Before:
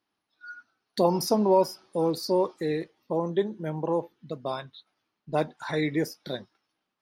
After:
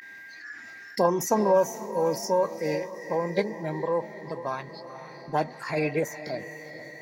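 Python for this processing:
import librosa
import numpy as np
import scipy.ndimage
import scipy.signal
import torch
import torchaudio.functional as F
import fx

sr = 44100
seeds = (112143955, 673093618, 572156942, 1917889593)

y = x + 10.0 ** (-42.0 / 20.0) * np.sin(2.0 * np.pi * 1600.0 * np.arange(len(x)) / sr)
y = fx.echo_diffused(y, sr, ms=455, feedback_pct=49, wet_db=-13.5)
y = fx.formant_shift(y, sr, semitones=3)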